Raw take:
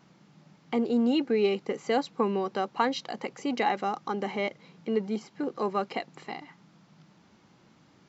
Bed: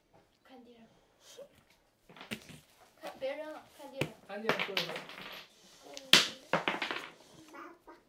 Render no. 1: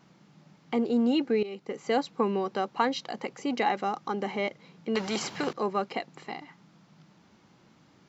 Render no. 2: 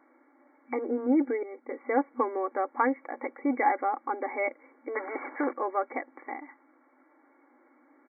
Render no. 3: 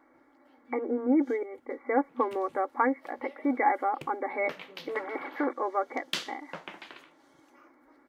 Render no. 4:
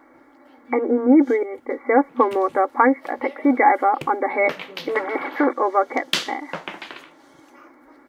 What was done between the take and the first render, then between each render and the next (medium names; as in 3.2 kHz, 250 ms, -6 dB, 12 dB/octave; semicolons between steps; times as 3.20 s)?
1.43–1.92 s: fade in, from -18 dB; 4.95–5.53 s: spectrum-flattening compressor 2:1
comb 3.6 ms, depth 47%; FFT band-pass 240–2300 Hz
add bed -10.5 dB
trim +10.5 dB; peak limiter -3 dBFS, peak gain reduction 1.5 dB